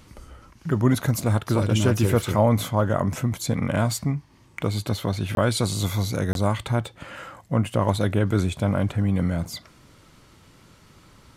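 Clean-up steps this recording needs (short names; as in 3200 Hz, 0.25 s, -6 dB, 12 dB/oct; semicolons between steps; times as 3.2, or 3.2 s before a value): interpolate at 5.35/6.33, 22 ms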